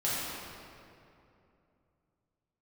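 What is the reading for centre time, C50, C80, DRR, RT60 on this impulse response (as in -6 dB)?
166 ms, -4.0 dB, -1.5 dB, -9.5 dB, 2.7 s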